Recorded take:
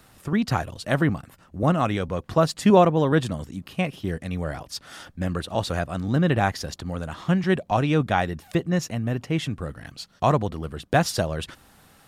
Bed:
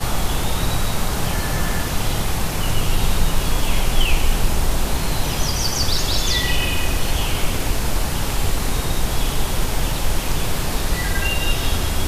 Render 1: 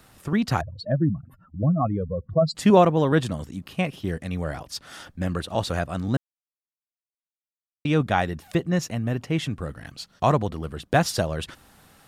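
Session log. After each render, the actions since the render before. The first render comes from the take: 0.61–2.55 spectral contrast raised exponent 2.7; 6.17–7.85 mute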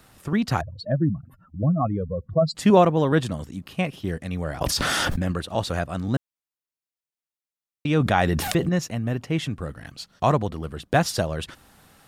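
4.61–5.32 fast leveller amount 100%; 7.97–8.69 fast leveller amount 70%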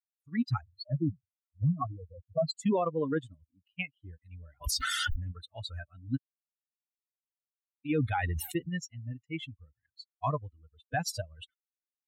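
per-bin expansion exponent 3; limiter -20.5 dBFS, peak gain reduction 11.5 dB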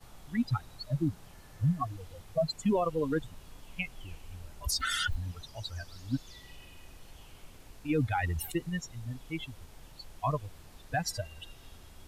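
add bed -31.5 dB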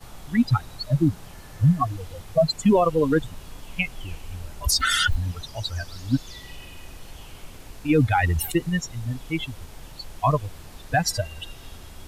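gain +10 dB

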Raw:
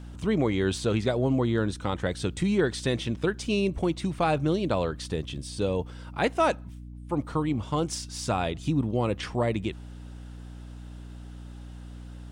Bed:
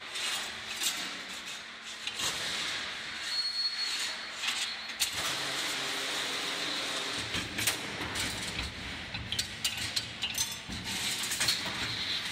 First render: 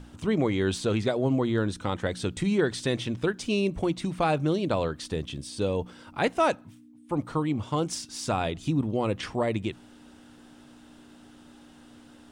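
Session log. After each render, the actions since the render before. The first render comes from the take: notches 60/120/180 Hz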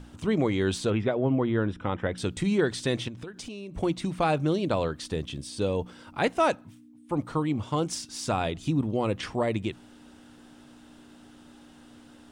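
0.9–2.18 polynomial smoothing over 25 samples; 3.08–3.75 compressor 12:1, threshold -35 dBFS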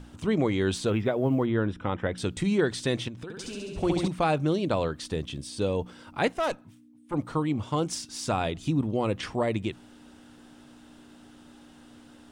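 0.86–1.46 short-mantissa float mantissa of 6-bit; 3.23–4.08 flutter echo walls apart 11.7 m, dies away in 1.3 s; 6.32–7.14 tube stage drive 22 dB, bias 0.6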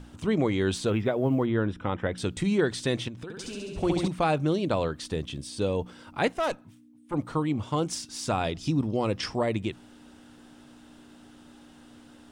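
8.44–9.38 bell 5200 Hz +14 dB 0.27 oct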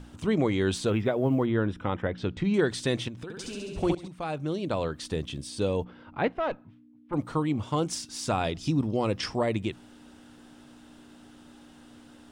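2.02–2.54 air absorption 200 m; 3.95–5.1 fade in, from -17.5 dB; 5.84–7.13 air absorption 350 m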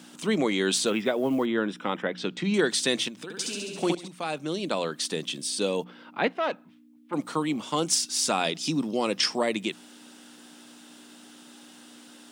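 steep high-pass 170 Hz 36 dB/oct; high shelf 2300 Hz +12 dB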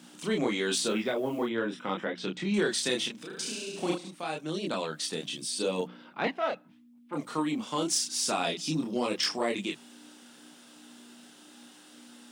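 chorus voices 2, 0.43 Hz, delay 29 ms, depth 4.2 ms; soft clip -15.5 dBFS, distortion -26 dB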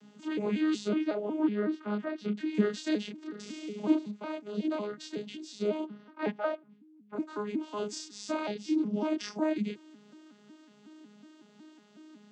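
arpeggiated vocoder bare fifth, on G#3, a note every 0.184 s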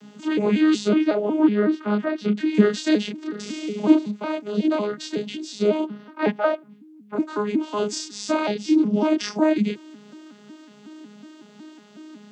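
gain +10.5 dB

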